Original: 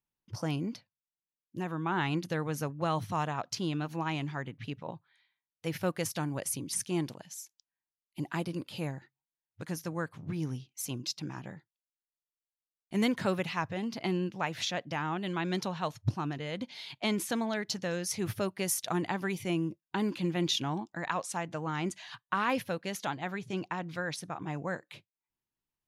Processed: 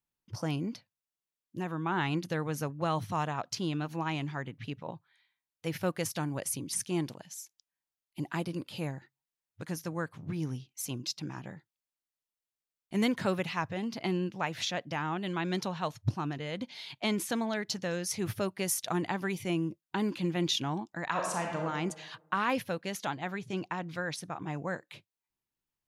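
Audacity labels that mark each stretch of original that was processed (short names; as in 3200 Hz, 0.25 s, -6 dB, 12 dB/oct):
21.090000	21.640000	reverb throw, RT60 1.2 s, DRR 0.5 dB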